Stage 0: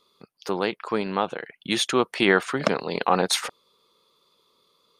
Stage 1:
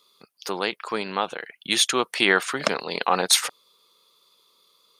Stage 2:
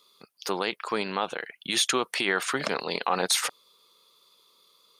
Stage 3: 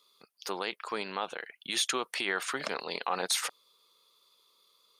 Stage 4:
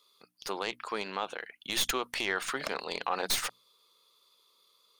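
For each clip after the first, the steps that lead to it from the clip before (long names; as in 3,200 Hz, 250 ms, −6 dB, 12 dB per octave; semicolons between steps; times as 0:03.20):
spectral tilt +2.5 dB per octave
brickwall limiter −12.5 dBFS, peak gain reduction 10.5 dB
low-shelf EQ 230 Hz −8.5 dB; level −5 dB
stylus tracing distortion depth 0.048 ms; mains-hum notches 60/120/180/240/300 Hz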